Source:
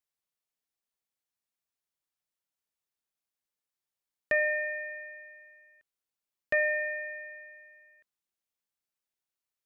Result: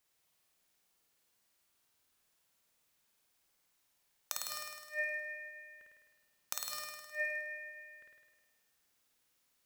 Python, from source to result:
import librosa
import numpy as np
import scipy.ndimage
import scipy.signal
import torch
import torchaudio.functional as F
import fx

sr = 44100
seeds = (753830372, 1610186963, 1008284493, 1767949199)

y = (np.mod(10.0 ** (26.0 / 20.0) * x + 1.0, 2.0) - 1.0) / 10.0 ** (26.0 / 20.0)
y = fx.gate_flip(y, sr, shuts_db=-33.0, range_db=-26)
y = fx.room_flutter(y, sr, wall_m=8.9, rt60_s=1.3)
y = F.gain(torch.from_numpy(y), 10.5).numpy()